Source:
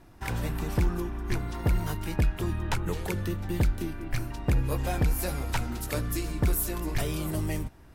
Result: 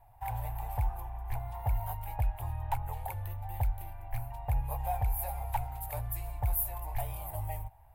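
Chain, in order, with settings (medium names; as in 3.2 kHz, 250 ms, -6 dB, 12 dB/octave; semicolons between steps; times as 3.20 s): FFT filter 120 Hz 0 dB, 180 Hz -26 dB, 360 Hz -25 dB, 810 Hz +12 dB, 1.3 kHz -12 dB, 2.2 kHz -6 dB, 5.8 kHz -19 dB, 14 kHz +7 dB; trim -5 dB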